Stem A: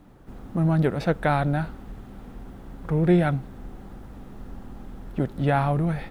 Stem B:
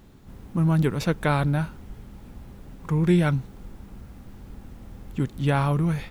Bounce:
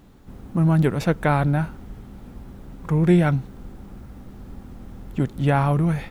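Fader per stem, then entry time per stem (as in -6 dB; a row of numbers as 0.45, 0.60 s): -5.0, -1.0 dB; 0.00, 0.00 s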